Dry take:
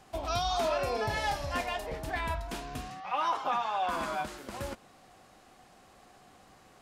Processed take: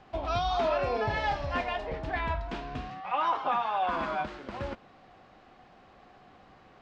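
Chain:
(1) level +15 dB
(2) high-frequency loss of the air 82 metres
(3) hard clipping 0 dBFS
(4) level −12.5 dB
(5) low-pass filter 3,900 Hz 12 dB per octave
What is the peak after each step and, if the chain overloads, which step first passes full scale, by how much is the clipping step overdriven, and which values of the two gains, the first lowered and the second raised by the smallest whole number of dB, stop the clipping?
−3.5, −4.0, −4.0, −16.5, −16.5 dBFS
no step passes full scale

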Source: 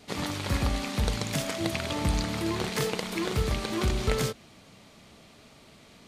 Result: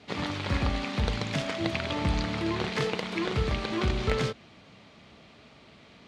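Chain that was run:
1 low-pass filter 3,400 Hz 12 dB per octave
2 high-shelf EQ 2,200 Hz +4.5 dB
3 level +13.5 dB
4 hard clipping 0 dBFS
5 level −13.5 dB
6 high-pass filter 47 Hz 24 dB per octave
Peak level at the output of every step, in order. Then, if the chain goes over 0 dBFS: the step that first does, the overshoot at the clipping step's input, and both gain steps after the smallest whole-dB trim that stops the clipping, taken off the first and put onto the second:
−11.0, −9.5, +4.0, 0.0, −13.5, −10.0 dBFS
step 3, 4.0 dB
step 3 +9.5 dB, step 5 −9.5 dB

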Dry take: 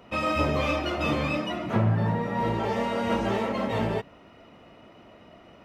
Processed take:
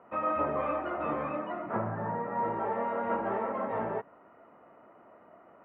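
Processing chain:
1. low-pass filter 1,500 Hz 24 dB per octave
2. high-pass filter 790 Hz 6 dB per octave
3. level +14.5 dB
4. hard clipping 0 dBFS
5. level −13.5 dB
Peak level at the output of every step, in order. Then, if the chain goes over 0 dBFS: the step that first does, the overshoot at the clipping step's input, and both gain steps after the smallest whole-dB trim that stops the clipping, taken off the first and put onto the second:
−13.0, −17.5, −3.0, −3.0, −16.5 dBFS
no step passes full scale

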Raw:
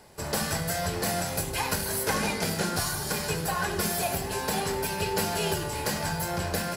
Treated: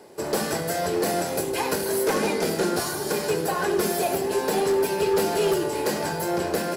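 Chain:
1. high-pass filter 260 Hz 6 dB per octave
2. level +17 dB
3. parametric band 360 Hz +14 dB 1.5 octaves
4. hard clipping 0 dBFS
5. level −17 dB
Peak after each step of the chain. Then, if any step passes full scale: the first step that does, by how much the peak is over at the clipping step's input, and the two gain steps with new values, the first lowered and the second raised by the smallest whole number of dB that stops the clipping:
−13.5, +3.5, +9.0, 0.0, −17.0 dBFS
step 2, 9.0 dB
step 2 +8 dB, step 5 −8 dB

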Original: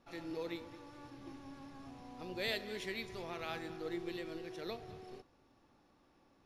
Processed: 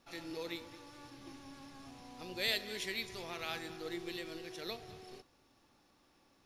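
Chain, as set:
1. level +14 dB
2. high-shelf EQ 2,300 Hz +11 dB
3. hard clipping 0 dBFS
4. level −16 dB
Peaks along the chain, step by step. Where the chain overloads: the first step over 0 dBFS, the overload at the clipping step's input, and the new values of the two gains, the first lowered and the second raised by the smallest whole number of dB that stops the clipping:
−10.0, −3.5, −3.5, −19.5 dBFS
no step passes full scale

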